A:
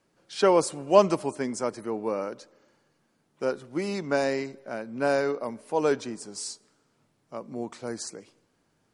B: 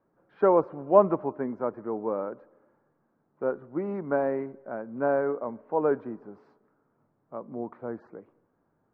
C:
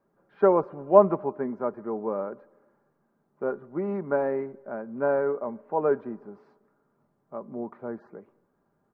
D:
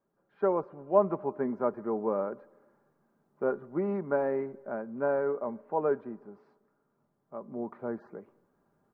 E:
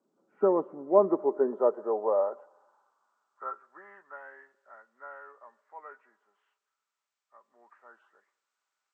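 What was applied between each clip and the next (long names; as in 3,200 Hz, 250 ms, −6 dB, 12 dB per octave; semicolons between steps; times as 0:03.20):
low-pass filter 1,400 Hz 24 dB per octave; low-shelf EQ 180 Hz −3.5 dB
comb filter 5 ms, depth 35%
speech leveller within 4 dB 0.5 s; level −4 dB
hearing-aid frequency compression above 1,200 Hz 1.5 to 1; high-pass filter sweep 260 Hz → 2,100 Hz, 0:00.78–0:04.11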